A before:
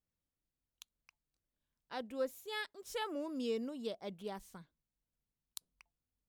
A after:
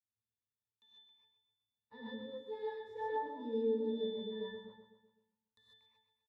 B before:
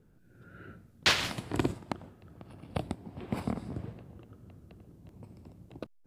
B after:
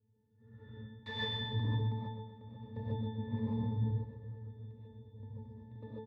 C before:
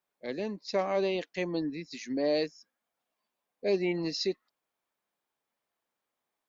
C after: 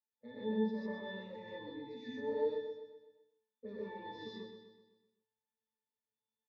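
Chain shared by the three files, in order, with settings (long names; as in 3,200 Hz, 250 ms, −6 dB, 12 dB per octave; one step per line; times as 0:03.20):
in parallel at +1 dB: downward compressor, threshold −39 dBFS
on the sum: leveller curve on the samples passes 2
soft clipping −10.5 dBFS
resonances in every octave A, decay 0.45 s
on a send: repeating echo 127 ms, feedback 50%, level −9 dB
on the sum: reverb whose tail is shaped and stops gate 170 ms rising, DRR −6 dB
level −2.5 dB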